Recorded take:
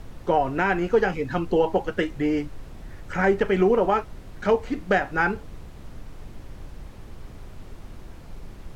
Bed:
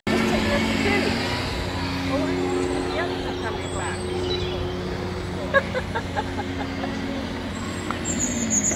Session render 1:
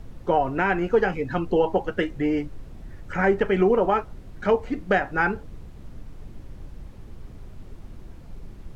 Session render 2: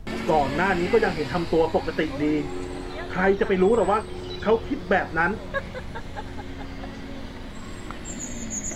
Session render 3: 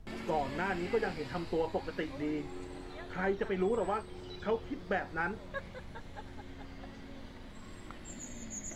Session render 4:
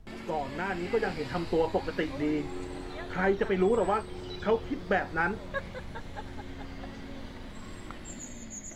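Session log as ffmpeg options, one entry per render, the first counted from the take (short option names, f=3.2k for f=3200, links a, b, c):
-af "afftdn=nr=6:nf=-43"
-filter_complex "[1:a]volume=-9.5dB[a];[0:a][a]amix=inputs=2:normalize=0"
-af "volume=-12dB"
-af "dynaudnorm=f=400:g=5:m=6dB"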